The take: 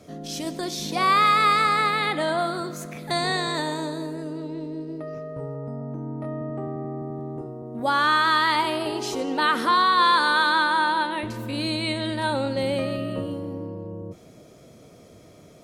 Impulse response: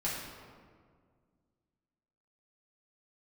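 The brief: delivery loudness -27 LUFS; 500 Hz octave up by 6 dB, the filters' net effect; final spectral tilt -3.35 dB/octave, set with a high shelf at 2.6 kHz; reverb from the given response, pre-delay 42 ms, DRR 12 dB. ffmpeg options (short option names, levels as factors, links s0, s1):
-filter_complex "[0:a]equalizer=f=500:t=o:g=8,highshelf=f=2600:g=-7,asplit=2[s0][s1];[1:a]atrim=start_sample=2205,adelay=42[s2];[s1][s2]afir=irnorm=-1:irlink=0,volume=0.133[s3];[s0][s3]amix=inputs=2:normalize=0,volume=0.631"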